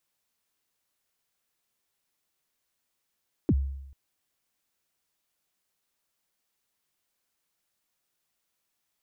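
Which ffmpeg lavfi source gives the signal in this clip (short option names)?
-f lavfi -i "aevalsrc='0.141*pow(10,-3*t/0.87)*sin(2*PI*(380*0.049/log(68/380)*(exp(log(68/380)*min(t,0.049)/0.049)-1)+68*max(t-0.049,0)))':d=0.44:s=44100"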